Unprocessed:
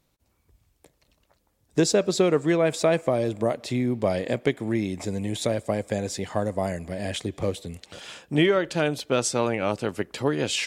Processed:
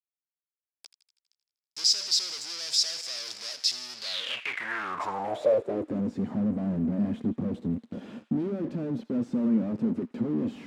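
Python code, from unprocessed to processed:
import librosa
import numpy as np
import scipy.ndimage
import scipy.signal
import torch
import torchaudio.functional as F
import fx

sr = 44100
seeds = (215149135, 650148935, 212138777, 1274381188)

y = fx.fuzz(x, sr, gain_db=46.0, gate_db=-46.0)
y = fx.echo_wet_highpass(y, sr, ms=81, feedback_pct=63, hz=1500.0, wet_db=-14.5)
y = fx.filter_sweep_bandpass(y, sr, from_hz=5100.0, to_hz=230.0, start_s=3.96, end_s=6.06, q=6.6)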